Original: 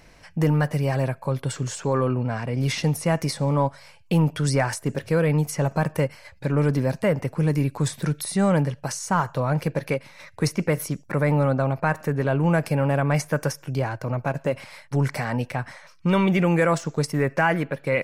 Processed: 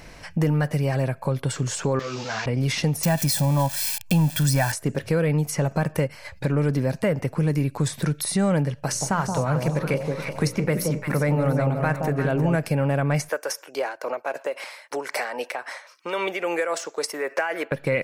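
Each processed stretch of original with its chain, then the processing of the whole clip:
0:01.99–0:02.46: linear delta modulator 32 kbit/s, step −38.5 dBFS + spectral tilt +4 dB per octave + string-ensemble chorus
0:03.03–0:04.72: spike at every zero crossing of −21.5 dBFS + comb filter 1.2 ms, depth 75%
0:08.75–0:12.56: mains-hum notches 60/120/180/240/300/360/420/480/540/600 Hz + delay that swaps between a low-pass and a high-pass 174 ms, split 880 Hz, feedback 59%, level −4 dB
0:13.29–0:17.72: high-pass filter 400 Hz 24 dB per octave + amplitude tremolo 3.7 Hz, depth 59%
whole clip: dynamic equaliser 1,000 Hz, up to −4 dB, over −38 dBFS, Q 2.3; downward compressor 2 to 1, threshold −33 dBFS; level +7.5 dB

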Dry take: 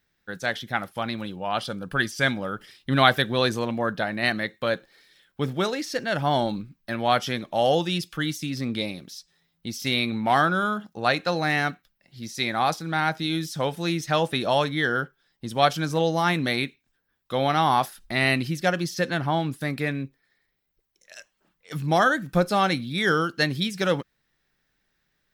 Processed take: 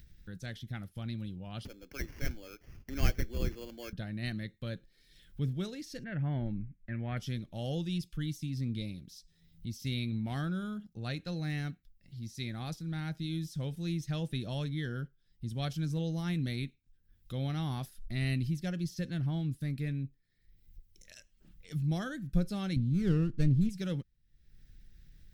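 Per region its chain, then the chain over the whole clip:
0:01.65–0:03.93: Butterworth high-pass 300 Hz + sample-rate reduction 3,800 Hz + parametric band 9,100 Hz −14.5 dB 0.55 octaves
0:06.04–0:07.17: Chebyshev low-pass filter 2,200 Hz, order 3 + parametric band 1,900 Hz +8 dB 0.71 octaves
0:22.76–0:23.69: low-pass filter 7,100 Hz + tilt shelving filter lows +7.5 dB, about 920 Hz + windowed peak hold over 9 samples
whole clip: guitar amp tone stack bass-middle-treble 10-0-1; upward compression, threshold −52 dBFS; low-shelf EQ 120 Hz +9.5 dB; level +7 dB

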